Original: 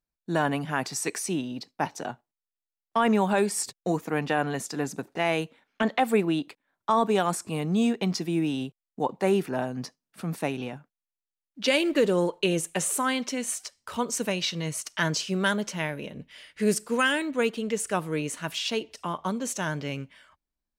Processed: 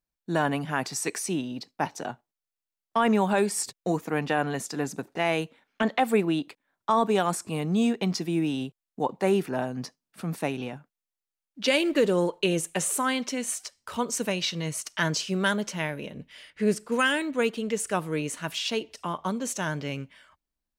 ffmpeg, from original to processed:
-filter_complex "[0:a]asettb=1/sr,asplit=3[s0][s1][s2];[s0]atrim=end=16.504[s3];[s1]atrim=start=16.5:end=16.92,asetpts=PTS-STARTPTS,afade=t=in:d=0.004:c=qsin,afade=t=out:st=0.416:d=0.004:c=qsin,highshelf=f=4500:g=-10.5[s4];[s2]atrim=start=16.916[s5];[s3][s4]acrossfade=d=0.004:c1=hsin:c2=qsin[s6];[s6][s5]acrossfade=d=0.004:c1=qsin:c2=hsin"

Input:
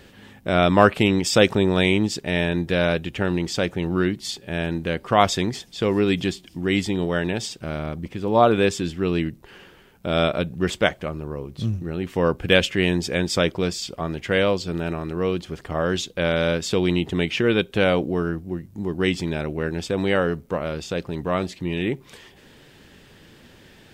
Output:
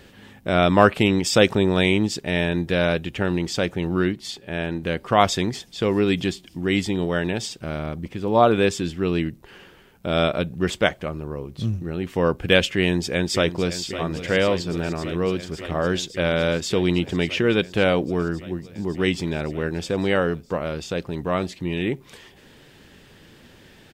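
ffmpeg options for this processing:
-filter_complex "[0:a]asettb=1/sr,asplit=3[s0][s1][s2];[s0]atrim=end=4.124[s3];[s1]atrim=start=4.12:end=4.83,asetpts=PTS-STARTPTS,afade=t=in:d=0.004:c=qsin,afade=t=out:st=0.706:d=0.004:c=qsin,bass=f=250:g=-3,treble=f=4000:g=-5[s4];[s2]atrim=start=4.826[s5];[s3][s4]acrossfade=d=0.004:c1=hsin:c2=qsin[s6];[s6][s5]acrossfade=d=0.004:c1=qsin:c2=hsin,asplit=2[s7][s8];[s8]afade=t=in:st=12.78:d=0.01,afade=t=out:st=13.8:d=0.01,aecho=0:1:560|1120|1680|2240|2800|3360|3920|4480|5040|5600|6160|6720:0.251189|0.21351|0.181484|0.154261|0.131122|0.111454|0.0947357|0.0805253|0.0684465|0.0581795|0.0494526|0.0420347[s9];[s7][s9]amix=inputs=2:normalize=0"

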